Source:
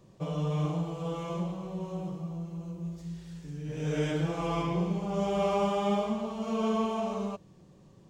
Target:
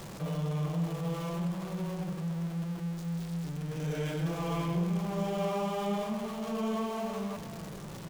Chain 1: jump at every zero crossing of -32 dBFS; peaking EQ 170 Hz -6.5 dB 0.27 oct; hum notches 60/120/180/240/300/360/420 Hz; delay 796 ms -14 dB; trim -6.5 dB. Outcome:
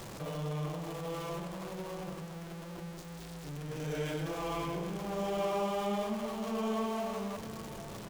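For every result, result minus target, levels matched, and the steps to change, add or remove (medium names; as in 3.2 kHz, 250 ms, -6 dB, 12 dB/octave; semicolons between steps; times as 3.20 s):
echo 286 ms late; 125 Hz band -4.5 dB
change: delay 510 ms -14 dB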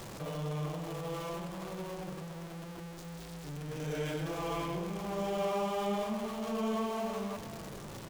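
125 Hz band -4.5 dB
change: peaking EQ 170 Hz +5.5 dB 0.27 oct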